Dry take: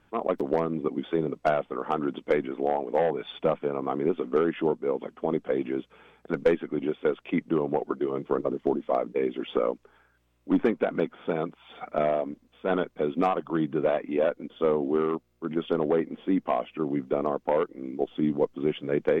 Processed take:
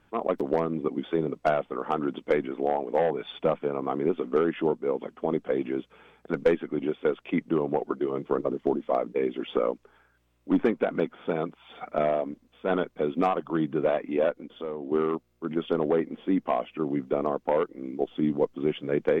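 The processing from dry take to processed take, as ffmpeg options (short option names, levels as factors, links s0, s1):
-filter_complex "[0:a]asettb=1/sr,asplit=3[s0][s1][s2];[s0]atrim=end=14.314[s3];[s1]atrim=start=14.31:end=14.92,asetpts=PTS-STARTPTS,afade=t=in:d=0.004:c=qsin,afade=t=out:st=0.606:d=0.004:c=qsin,acompressor=threshold=0.0126:ratio=2:attack=3.2:release=140:knee=1:detection=peak[s4];[s2]atrim=start=14.916[s5];[s3][s4]acrossfade=d=0.004:c1=hsin:c2=qsin[s6];[s6][s5]acrossfade=d=0.004:c1=qsin:c2=hsin"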